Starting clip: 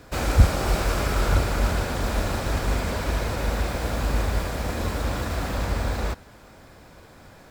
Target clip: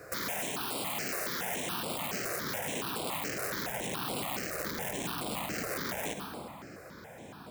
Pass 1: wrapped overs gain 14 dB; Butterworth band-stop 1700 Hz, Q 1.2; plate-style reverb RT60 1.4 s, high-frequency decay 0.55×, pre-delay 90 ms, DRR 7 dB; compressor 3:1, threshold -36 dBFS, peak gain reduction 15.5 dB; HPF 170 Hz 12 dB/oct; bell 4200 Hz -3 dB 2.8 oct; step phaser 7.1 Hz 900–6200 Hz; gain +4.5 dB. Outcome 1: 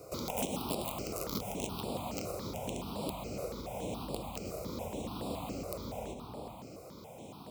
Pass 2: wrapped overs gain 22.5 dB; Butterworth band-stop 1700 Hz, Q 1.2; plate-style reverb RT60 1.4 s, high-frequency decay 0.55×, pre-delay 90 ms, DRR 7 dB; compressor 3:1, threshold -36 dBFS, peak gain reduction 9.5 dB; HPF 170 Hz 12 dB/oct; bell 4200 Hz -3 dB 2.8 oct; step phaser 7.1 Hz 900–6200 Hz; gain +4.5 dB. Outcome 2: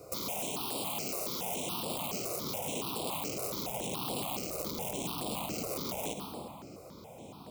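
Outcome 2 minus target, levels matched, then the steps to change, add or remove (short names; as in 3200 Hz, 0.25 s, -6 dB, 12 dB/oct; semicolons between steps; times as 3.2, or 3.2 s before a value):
2000 Hz band -9.0 dB
remove: Butterworth band-stop 1700 Hz, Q 1.2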